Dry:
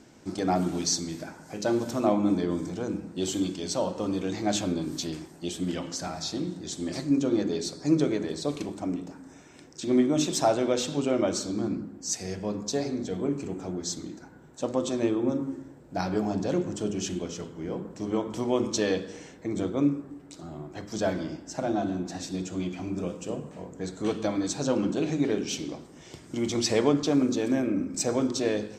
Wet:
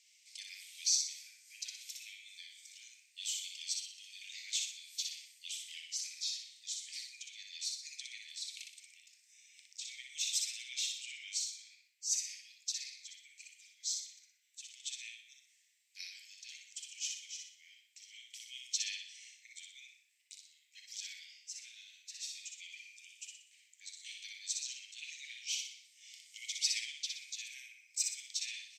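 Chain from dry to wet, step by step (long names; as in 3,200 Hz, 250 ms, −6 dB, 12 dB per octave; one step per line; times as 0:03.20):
Butterworth high-pass 2,100 Hz 72 dB per octave
on a send: repeating echo 61 ms, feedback 41%, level −4 dB
on the sum: level −4 dB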